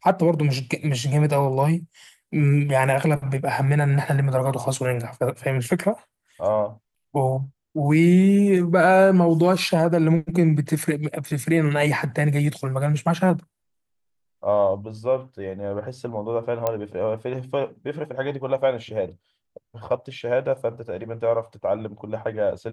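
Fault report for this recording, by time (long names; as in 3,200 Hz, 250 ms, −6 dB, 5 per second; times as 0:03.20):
0:16.67: click −10 dBFS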